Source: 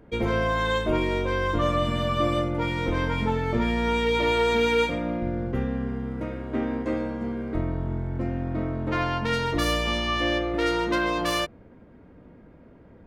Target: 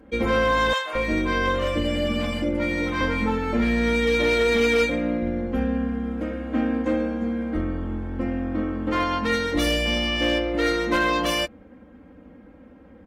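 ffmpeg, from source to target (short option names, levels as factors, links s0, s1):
-filter_complex "[0:a]highpass=45,aecho=1:1:3.8:0.92,asoftclip=type=hard:threshold=0.178,asettb=1/sr,asplit=3[s0][s1][s2];[s0]atrim=end=0.734[s3];[s1]atrim=start=0.73:end=3.01,asetpts=PTS-STARTPTS,afade=t=in:d=0.004:c=qsin,afade=t=out:st=2.276:d=0.004:c=qsin,acrossover=split=660[s4][s5];[s4]adelay=220[s6];[s6][s5]amix=inputs=2:normalize=0,atrim=end_sample=100548[s7];[s2]atrim=start=3.006[s8];[s3][s7]acrossfade=d=0.004:c1=hsin:c2=qsin[s9];[s9][s8]acrossfade=d=0.004:c1=qsin:c2=hsin" -ar 48000 -c:a aac -b:a 48k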